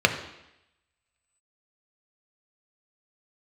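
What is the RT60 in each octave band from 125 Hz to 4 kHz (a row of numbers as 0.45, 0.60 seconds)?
0.75, 0.85, 0.85, 0.85, 0.95, 0.90 seconds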